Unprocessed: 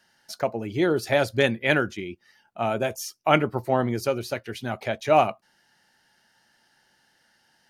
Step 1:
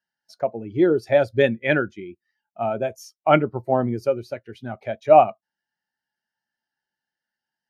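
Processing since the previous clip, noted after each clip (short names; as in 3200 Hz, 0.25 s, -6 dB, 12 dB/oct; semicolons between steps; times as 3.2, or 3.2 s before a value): spectral expander 1.5:1; gain +2 dB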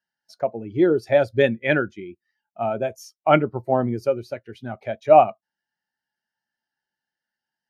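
nothing audible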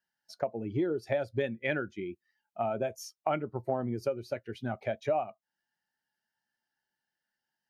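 compressor 6:1, threshold -27 dBFS, peak gain reduction 18.5 dB; gain -1 dB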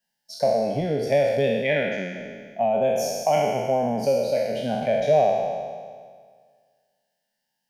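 spectral trails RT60 1.81 s; fixed phaser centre 340 Hz, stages 6; gain +8 dB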